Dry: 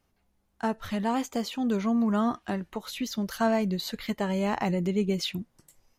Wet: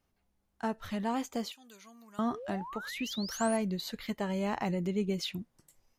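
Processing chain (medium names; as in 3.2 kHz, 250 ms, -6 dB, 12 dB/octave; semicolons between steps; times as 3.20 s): 1.52–2.19 s: pre-emphasis filter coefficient 0.97; 2.31–3.57 s: painted sound rise 380–11000 Hz -38 dBFS; trim -5 dB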